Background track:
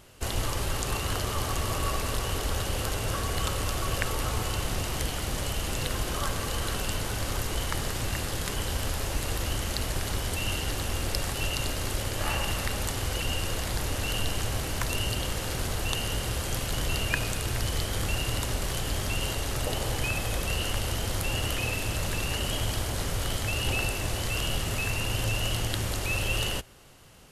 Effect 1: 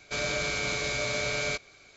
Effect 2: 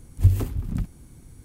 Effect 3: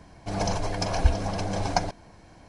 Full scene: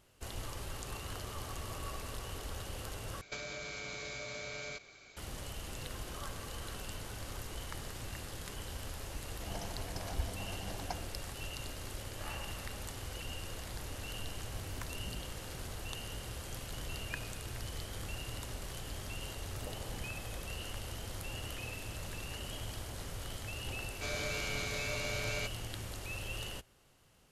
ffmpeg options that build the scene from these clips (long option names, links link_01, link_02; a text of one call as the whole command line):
ffmpeg -i bed.wav -i cue0.wav -i cue1.wav -i cue2.wav -filter_complex "[1:a]asplit=2[link_01][link_02];[2:a]asplit=2[link_03][link_04];[0:a]volume=-13dB[link_05];[link_01]acompressor=threshold=-47dB:ratio=6:attack=81:release=46:knee=1:detection=peak[link_06];[link_03]acompressor=threshold=-28dB:ratio=6:attack=3.2:release=140:knee=1:detection=peak[link_07];[link_04]acompressor=threshold=-25dB:ratio=6:attack=3.2:release=140:knee=1:detection=peak[link_08];[link_05]asplit=2[link_09][link_10];[link_09]atrim=end=3.214[link_11];[link_06]atrim=end=1.96,asetpts=PTS-STARTPTS,volume=-2dB[link_12];[link_10]atrim=start=5.166[link_13];[3:a]atrim=end=2.48,asetpts=PTS-STARTPTS,volume=-17dB,afade=type=in:duration=0.004:curve=hsin,afade=type=out:start_time=2.476:duration=0.004:curve=hsin,adelay=403074S[link_14];[link_07]atrim=end=1.44,asetpts=PTS-STARTPTS,volume=-15dB,afade=type=in:duration=0.004:curve=hsin,afade=type=out:start_time=1.436:duration=0.004:curve=hsin,adelay=14360[link_15];[link_08]atrim=end=1.44,asetpts=PTS-STARTPTS,volume=-17.5dB,afade=type=in:duration=0.004:curve=hsin,afade=type=out:start_time=1.436:duration=0.004:curve=hsin,adelay=19220[link_16];[link_02]atrim=end=1.96,asetpts=PTS-STARTPTS,volume=-8.5dB,afade=type=in:duration=0.004:curve=hsin,afade=type=out:start_time=1.956:duration=0.004:curve=hsin,adelay=23900[link_17];[link_11][link_12]acrossfade=duration=0.004:curve1=hsin:curve2=hsin[link_18];[link_18][link_13]acrossfade=duration=0.004:curve1=hsin:curve2=hsin[link_19];[link_19][link_14][link_15][link_16][link_17]amix=inputs=5:normalize=0" out.wav